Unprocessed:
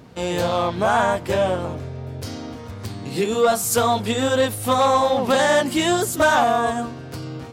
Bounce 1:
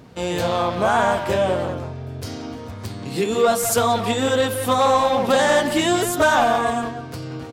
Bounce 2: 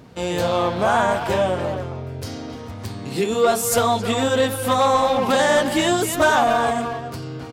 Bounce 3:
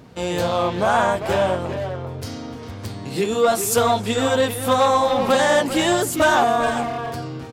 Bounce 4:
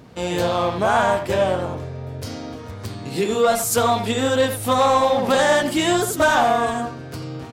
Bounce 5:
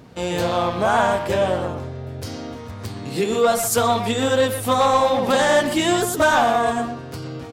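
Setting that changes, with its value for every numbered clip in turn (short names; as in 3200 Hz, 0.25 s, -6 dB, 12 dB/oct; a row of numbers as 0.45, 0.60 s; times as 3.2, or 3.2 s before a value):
speakerphone echo, time: 180, 270, 400, 80, 120 ms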